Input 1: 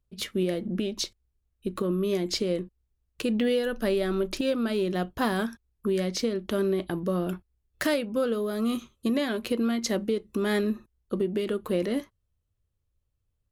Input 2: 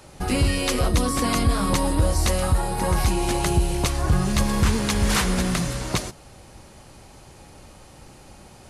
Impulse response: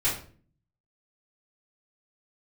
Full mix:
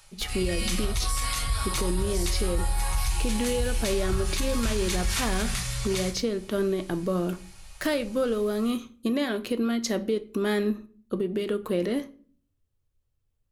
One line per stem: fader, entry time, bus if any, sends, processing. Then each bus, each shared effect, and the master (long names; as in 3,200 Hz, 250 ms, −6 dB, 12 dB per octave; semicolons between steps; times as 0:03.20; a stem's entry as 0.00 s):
0.0 dB, 0.00 s, send −21 dB, no processing
−2.5 dB, 0.00 s, send −15 dB, automatic gain control gain up to 7 dB; guitar amp tone stack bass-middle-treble 10-0-10; automatic ducking −8 dB, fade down 0.20 s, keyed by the first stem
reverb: on, RT60 0.45 s, pre-delay 3 ms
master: brickwall limiter −17 dBFS, peak gain reduction 8 dB